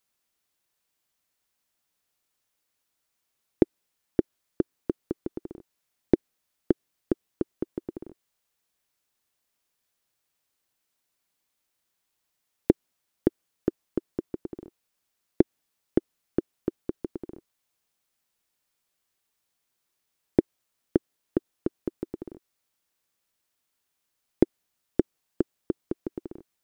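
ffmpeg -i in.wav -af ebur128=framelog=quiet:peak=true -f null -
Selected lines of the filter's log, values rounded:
Integrated loudness:
  I:         -31.4 LUFS
  Threshold: -42.2 LUFS
Loudness range:
  LRA:         6.9 LU
  Threshold: -54.6 LUFS
  LRA low:   -39.4 LUFS
  LRA high:  -32.5 LUFS
True peak:
  Peak:       -3.2 dBFS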